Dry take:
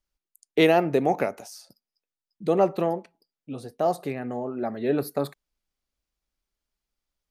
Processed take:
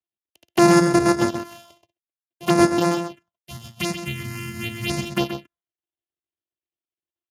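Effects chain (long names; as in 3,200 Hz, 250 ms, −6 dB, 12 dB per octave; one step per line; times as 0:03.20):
samples sorted by size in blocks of 128 samples
parametric band 2,900 Hz +10 dB 0.29 octaves
noise gate with hold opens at −45 dBFS
phaser swept by the level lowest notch 200 Hz, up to 3,100 Hz, full sweep at −19 dBFS
in parallel at −11 dB: soft clipping −21.5 dBFS, distortion −9 dB
on the sum: gain on a spectral selection 0:03.47–0:05.11, 250–1,800 Hz −10 dB
slap from a distant wall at 22 metres, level −8 dB
level +4 dB
Speex 36 kbit/s 32,000 Hz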